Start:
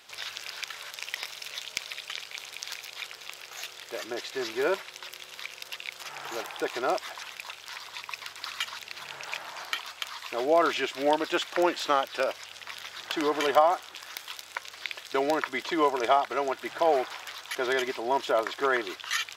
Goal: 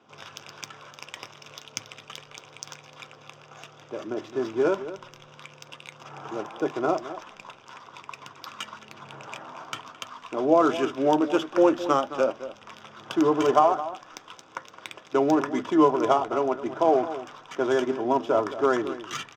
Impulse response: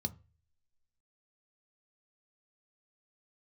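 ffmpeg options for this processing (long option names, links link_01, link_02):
-filter_complex "[0:a]asplit=2[link_01][link_02];[link_02]adelay=215.7,volume=-13dB,highshelf=frequency=4000:gain=-4.85[link_03];[link_01][link_03]amix=inputs=2:normalize=0,adynamicsmooth=sensitivity=2.5:basefreq=1900[link_04];[1:a]atrim=start_sample=2205,asetrate=61740,aresample=44100[link_05];[link_04][link_05]afir=irnorm=-1:irlink=0,volume=2.5dB"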